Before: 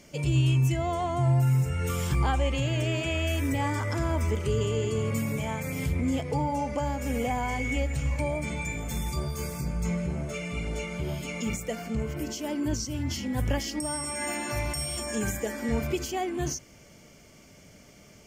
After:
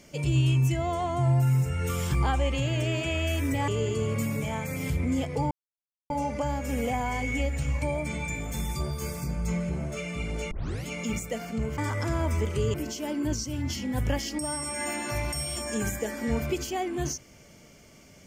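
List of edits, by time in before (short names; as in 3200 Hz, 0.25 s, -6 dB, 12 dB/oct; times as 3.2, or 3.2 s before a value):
3.68–4.64 move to 12.15
6.47 insert silence 0.59 s
10.88 tape start 0.35 s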